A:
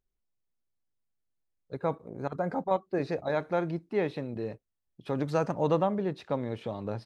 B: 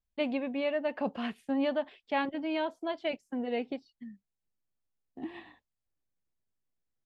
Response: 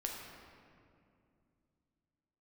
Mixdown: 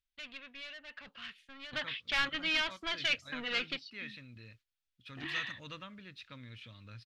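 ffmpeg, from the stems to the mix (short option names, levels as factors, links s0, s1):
-filter_complex "[0:a]equalizer=f=160:t=o:w=0.33:g=-9,equalizer=f=250:t=o:w=0.33:g=8,equalizer=f=400:t=o:w=0.33:g=-7,equalizer=f=800:t=o:w=0.33:g=-9,equalizer=f=2500:t=o:w=0.33:g=6,volume=0.316,asplit=2[s0][s1];[1:a]asplit=2[s2][s3];[s3]highpass=f=720:p=1,volume=11.2,asoftclip=type=tanh:threshold=0.119[s4];[s2][s4]amix=inputs=2:normalize=0,lowpass=f=2500:p=1,volume=0.501,volume=0.841[s5];[s1]apad=whole_len=310961[s6];[s5][s6]sidechaingate=range=0.178:threshold=0.00112:ratio=16:detection=peak[s7];[s0][s7]amix=inputs=2:normalize=0,firequalizer=gain_entry='entry(120,0);entry(230,-13);entry(760,-18);entry(1300,1);entry(3500,10);entry(8100,0)':delay=0.05:min_phase=1"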